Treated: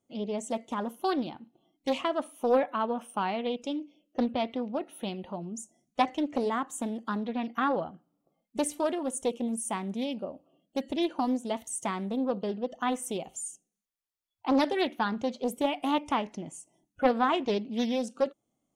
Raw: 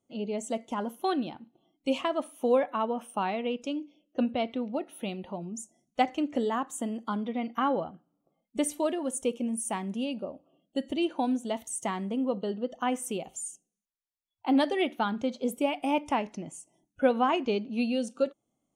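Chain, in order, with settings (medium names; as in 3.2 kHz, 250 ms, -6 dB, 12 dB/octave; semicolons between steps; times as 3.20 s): loudspeaker Doppler distortion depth 0.48 ms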